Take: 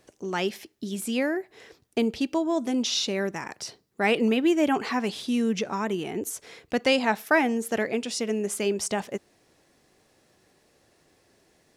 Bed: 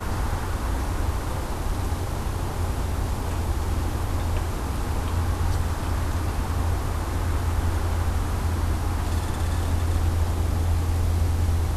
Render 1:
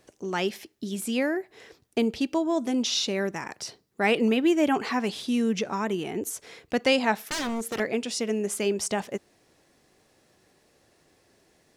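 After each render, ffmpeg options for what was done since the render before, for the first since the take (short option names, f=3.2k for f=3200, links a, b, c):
-filter_complex "[0:a]asettb=1/sr,asplit=3[a][b][c];[a]atrim=end=7.304[d];[b]atrim=start=7.3:end=7.8,asetpts=PTS-STARTPTS,afade=t=in:d=0.004:c=qsin,afade=t=out:st=0.496:d=0.004:c=qsin,aeval=exprs='0.0596*(abs(mod(val(0)/0.0596+3,4)-2)-1)':c=same[e];[c]atrim=start=7.796[f];[d][e]acrossfade=d=0.004:c1=hsin:c2=qsin[g];[g][f]acrossfade=d=0.004:c1=qsin:c2=hsin"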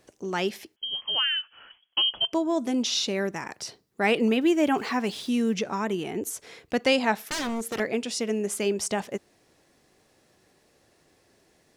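-filter_complex "[0:a]asettb=1/sr,asplit=3[a][b][c];[a]atrim=end=0.764[d];[b]atrim=start=0.76:end=2.33,asetpts=PTS-STARTPTS,afade=t=in:d=0.004:c=qsin,afade=t=out:st=1.566:d=0.004:c=qsin,lowpass=f=2.9k:t=q:w=0.5098,lowpass=f=2.9k:t=q:w=0.6013,lowpass=f=2.9k:t=q:w=0.9,lowpass=f=2.9k:t=q:w=2.563,afreqshift=-3400[e];[c]atrim=start=2.326[f];[d][e]acrossfade=d=0.004:c1=hsin:c2=qsin[g];[g][f]acrossfade=d=0.004:c1=qsin:c2=hsin,asettb=1/sr,asplit=3[h][i][j];[h]atrim=end=4.414[k];[i]atrim=start=4.41:end=5.54,asetpts=PTS-STARTPTS,afade=t=in:d=0.004:c=qsin,afade=t=out:st=1.126:d=0.004:c=qsin,aeval=exprs='val(0)*gte(abs(val(0)),0.00447)':c=same[l];[j]atrim=start=5.536[m];[k][l]acrossfade=d=0.004:c1=hsin:c2=qsin[n];[n][m]acrossfade=d=0.004:c1=qsin:c2=hsin"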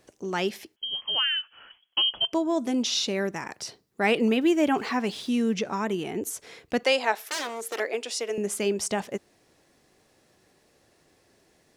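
-filter_complex "[0:a]asettb=1/sr,asplit=3[a][b][c];[a]atrim=end=4.654[d];[b]atrim=start=4.65:end=5.65,asetpts=PTS-STARTPTS,afade=t=in:d=0.004:c=qsin,afade=t=out:st=0.996:d=0.004:c=qsin,highshelf=f=10k:g=-5[e];[c]atrim=start=5.646[f];[d][e]acrossfade=d=0.004:c1=hsin:c2=qsin[g];[g][f]acrossfade=d=0.004:c1=qsin:c2=hsin,asettb=1/sr,asplit=3[h][i][j];[h]atrim=end=6.834[k];[i]atrim=start=6.83:end=8.38,asetpts=PTS-STARTPTS,afade=t=in:d=0.004:c=qsin,afade=t=out:st=1.546:d=0.004:c=qsin,highpass=f=360:w=0.5412,highpass=f=360:w=1.3066[l];[j]atrim=start=8.376[m];[k][l]acrossfade=d=0.004:c1=hsin:c2=qsin[n];[n][m]acrossfade=d=0.004:c1=qsin:c2=hsin"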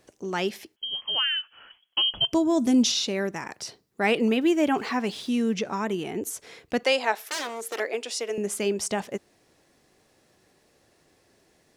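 -filter_complex "[0:a]asettb=1/sr,asplit=3[a][b][c];[a]atrim=end=2.094[d];[b]atrim=start=2.09:end=2.92,asetpts=PTS-STARTPTS,afade=t=in:d=0.004:c=qsin,afade=t=out:st=0.826:d=0.004:c=qsin,bass=f=250:g=14,treble=f=4k:g=7[e];[c]atrim=start=2.916[f];[d][e]acrossfade=d=0.004:c1=hsin:c2=qsin[g];[g][f]acrossfade=d=0.004:c1=qsin:c2=hsin"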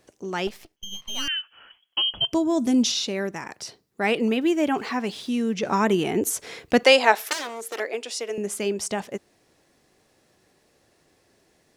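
-filter_complex "[0:a]asettb=1/sr,asplit=3[a][b][c];[a]atrim=end=0.474[d];[b]atrim=start=0.47:end=1.28,asetpts=PTS-STARTPTS,afade=t=in:d=0.004:c=qsin,afade=t=out:st=0.806:d=0.004:c=qsin,aeval=exprs='max(val(0),0)':c=same[e];[c]atrim=start=1.276[f];[d][e]acrossfade=d=0.004:c1=hsin:c2=qsin[g];[g][f]acrossfade=d=0.004:c1=qsin:c2=hsin,asplit=3[h][i][j];[h]atrim=end=5.632[k];[i]atrim=start=5.628:end=7.332,asetpts=PTS-STARTPTS,volume=7.5dB[l];[j]atrim=start=7.328[m];[k][l]acrossfade=d=0.004:c1=hsin:c2=hsin[n];[n][m]acrossfade=d=0.004:c1=hsin:c2=hsin"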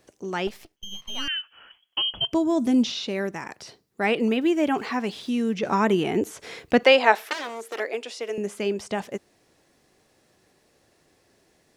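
-filter_complex "[0:a]acrossover=split=3900[a][b];[b]acompressor=threshold=-44dB:ratio=4:attack=1:release=60[c];[a][c]amix=inputs=2:normalize=0"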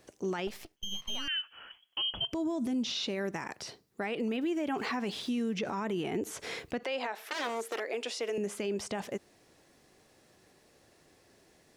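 -af "acompressor=threshold=-24dB:ratio=10,alimiter=level_in=1.5dB:limit=-24dB:level=0:latency=1:release=59,volume=-1.5dB"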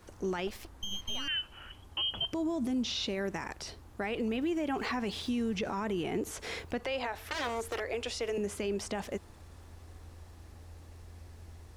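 -filter_complex "[1:a]volume=-27.5dB[a];[0:a][a]amix=inputs=2:normalize=0"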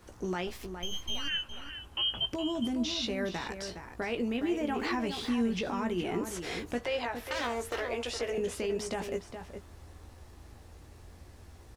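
-filter_complex "[0:a]asplit=2[a][b];[b]adelay=17,volume=-7dB[c];[a][c]amix=inputs=2:normalize=0,asplit=2[d][e];[e]adelay=414,volume=-8dB,highshelf=f=4k:g=-9.32[f];[d][f]amix=inputs=2:normalize=0"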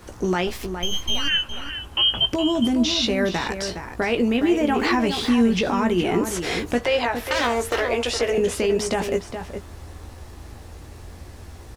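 -af "volume=11.5dB"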